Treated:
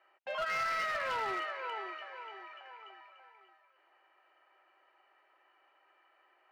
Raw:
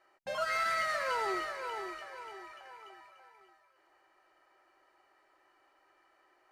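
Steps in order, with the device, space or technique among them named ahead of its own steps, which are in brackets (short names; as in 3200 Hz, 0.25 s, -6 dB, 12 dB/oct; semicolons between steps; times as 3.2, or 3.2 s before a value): megaphone (BPF 460–2600 Hz; bell 2800 Hz +8 dB 0.52 oct; hard clip -30 dBFS, distortion -14 dB)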